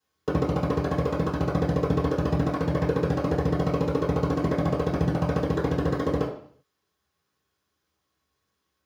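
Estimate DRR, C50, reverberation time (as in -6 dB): -13.0 dB, 6.0 dB, 0.55 s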